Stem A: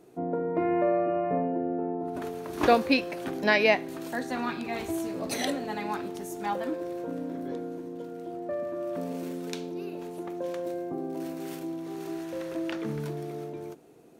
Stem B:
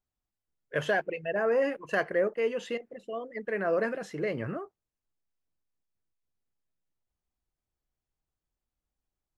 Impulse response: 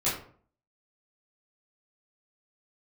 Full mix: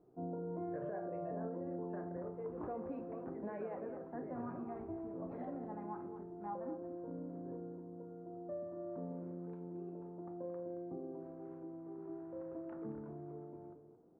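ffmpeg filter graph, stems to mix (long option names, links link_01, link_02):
-filter_complex "[0:a]alimiter=limit=-18.5dB:level=0:latency=1:release=83,volume=-14dB,asplit=3[link_01][link_02][link_03];[link_02]volume=-16.5dB[link_04];[link_03]volume=-10.5dB[link_05];[1:a]acompressor=threshold=-28dB:ratio=6,volume=-7.5dB,afade=type=out:start_time=0.93:duration=0.56:silence=0.298538,asplit=2[link_06][link_07];[link_07]volume=-11.5dB[link_08];[2:a]atrim=start_sample=2205[link_09];[link_04][link_08]amix=inputs=2:normalize=0[link_10];[link_10][link_09]afir=irnorm=-1:irlink=0[link_11];[link_05]aecho=0:1:224:1[link_12];[link_01][link_06][link_11][link_12]amix=inputs=4:normalize=0,lowpass=frequency=1200:width=0.5412,lowpass=frequency=1200:width=1.3066,lowshelf=frequency=140:gain=5.5,alimiter=level_in=9.5dB:limit=-24dB:level=0:latency=1:release=144,volume=-9.5dB"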